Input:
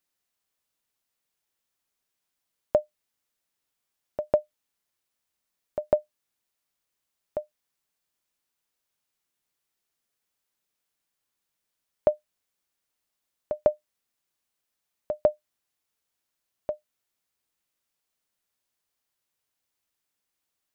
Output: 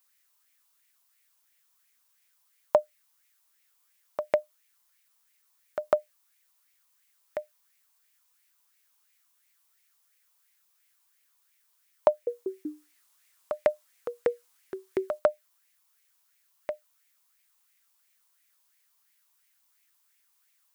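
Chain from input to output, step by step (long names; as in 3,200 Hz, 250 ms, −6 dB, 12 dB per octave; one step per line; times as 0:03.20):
spectral tilt +3.5 dB per octave
0:12.08–0:15.19: delay with pitch and tempo change per echo 190 ms, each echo −4 semitones, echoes 3
auto-filter bell 2.9 Hz 960–2,200 Hz +13 dB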